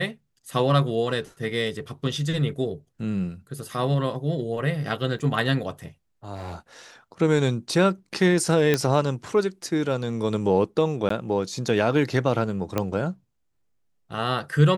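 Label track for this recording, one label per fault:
5.190000	5.200000	drop-out 6.1 ms
6.340000	6.560000	clipping −30.5 dBFS
8.740000	8.740000	click −7 dBFS
11.090000	11.100000	drop-out 14 ms
12.780000	12.780000	click −10 dBFS

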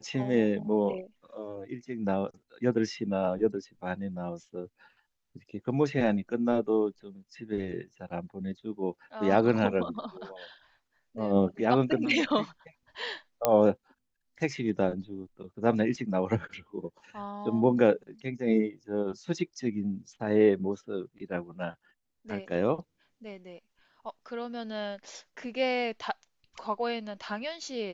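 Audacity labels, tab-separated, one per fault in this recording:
13.450000	13.450000	click −9 dBFS

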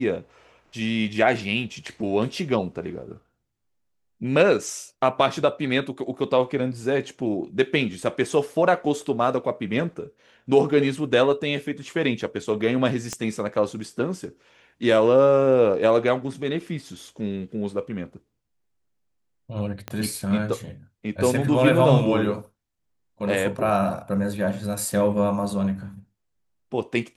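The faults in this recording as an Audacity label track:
13.130000	13.130000	click −15 dBFS
19.880000	19.880000	click −15 dBFS

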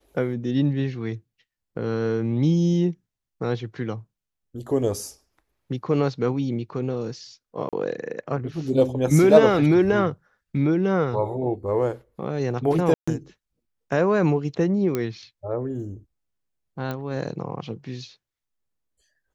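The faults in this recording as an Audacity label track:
7.690000	7.730000	drop-out 37 ms
12.940000	13.070000	drop-out 135 ms
14.950000	14.950000	click −12 dBFS
16.910000	16.910000	click −17 dBFS

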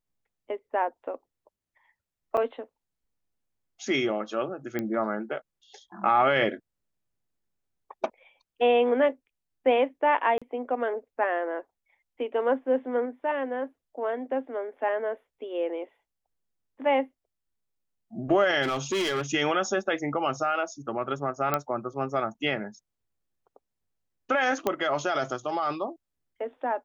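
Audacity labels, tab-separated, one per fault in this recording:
2.370000	2.380000	drop-out 6.6 ms
4.790000	4.790000	click −17 dBFS
10.380000	10.420000	drop-out 36 ms
18.620000	19.220000	clipping −24 dBFS
21.540000	21.540000	click −10 dBFS
24.670000	24.670000	click −12 dBFS

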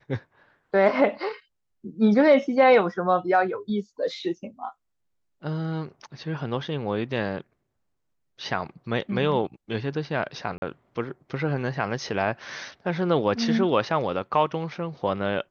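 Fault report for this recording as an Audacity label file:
10.580000	10.620000	drop-out 41 ms

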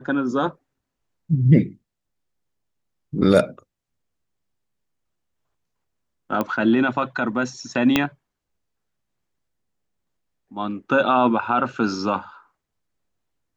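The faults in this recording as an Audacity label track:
6.410000	6.410000	click −11 dBFS
7.960000	7.960000	click −3 dBFS

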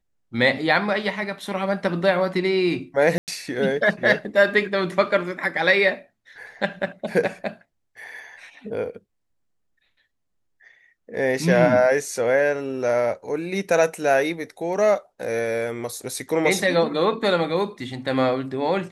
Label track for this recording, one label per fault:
3.180000	3.280000	drop-out 98 ms

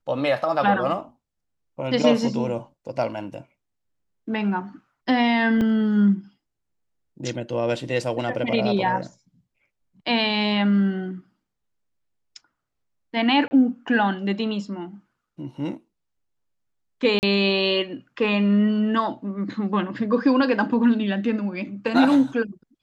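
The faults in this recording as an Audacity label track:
5.610000	5.610000	drop-out 3.2 ms
13.480000	13.510000	drop-out 30 ms
17.190000	17.230000	drop-out 39 ms

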